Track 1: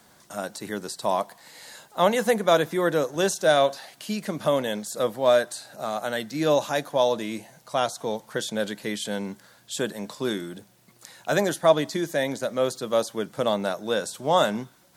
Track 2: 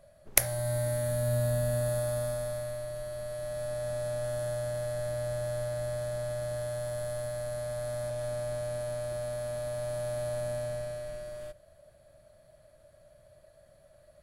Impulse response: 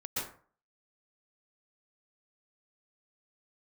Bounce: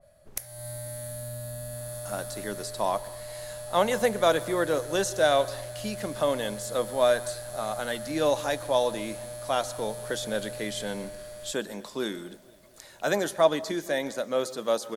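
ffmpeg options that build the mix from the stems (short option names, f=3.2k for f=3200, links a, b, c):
-filter_complex "[0:a]equalizer=f=110:t=o:w=1.2:g=-9.5,adelay=1750,volume=-3dB,asplit=3[a][b][c];[b]volume=-21.5dB[d];[c]volume=-24dB[e];[1:a]highshelf=f=4.9k:g=5,acompressor=threshold=-37dB:ratio=3,adynamicequalizer=threshold=0.00141:dfrequency=2300:dqfactor=0.7:tfrequency=2300:tqfactor=0.7:attack=5:release=100:ratio=0.375:range=2.5:mode=boostabove:tftype=highshelf,volume=-1dB[f];[2:a]atrim=start_sample=2205[g];[d][g]afir=irnorm=-1:irlink=0[h];[e]aecho=0:1:233|466|699|932|1165|1398|1631|1864|2097:1|0.57|0.325|0.185|0.106|0.0602|0.0343|0.0195|0.0111[i];[a][f][h][i]amix=inputs=4:normalize=0"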